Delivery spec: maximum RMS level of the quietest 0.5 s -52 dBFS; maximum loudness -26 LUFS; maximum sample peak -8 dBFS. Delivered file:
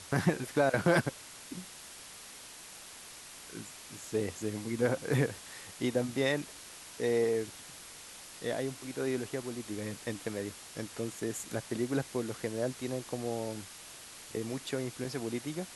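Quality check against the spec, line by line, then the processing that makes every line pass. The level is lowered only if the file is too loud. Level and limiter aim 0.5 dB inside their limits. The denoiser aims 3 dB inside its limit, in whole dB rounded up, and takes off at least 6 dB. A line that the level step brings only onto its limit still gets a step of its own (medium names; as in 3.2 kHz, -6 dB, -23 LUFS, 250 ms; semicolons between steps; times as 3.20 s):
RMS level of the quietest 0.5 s -49 dBFS: fail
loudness -34.5 LUFS: pass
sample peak -13.5 dBFS: pass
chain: noise reduction 6 dB, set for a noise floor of -49 dBFS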